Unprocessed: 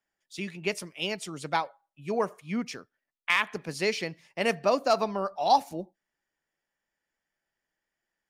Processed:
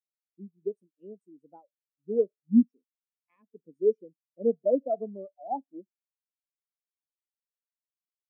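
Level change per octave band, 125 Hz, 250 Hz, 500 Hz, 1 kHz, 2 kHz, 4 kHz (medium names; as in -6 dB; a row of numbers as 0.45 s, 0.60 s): no reading, +6.0 dB, +1.0 dB, -12.5 dB, under -40 dB, under -40 dB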